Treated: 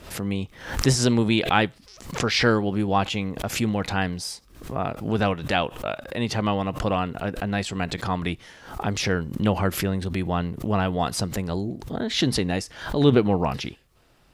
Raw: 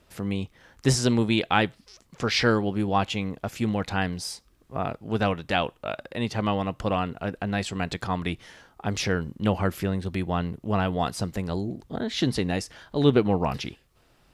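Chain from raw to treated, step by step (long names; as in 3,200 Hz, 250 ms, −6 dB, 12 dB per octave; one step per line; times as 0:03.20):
background raised ahead of every attack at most 98 dB per second
level +1.5 dB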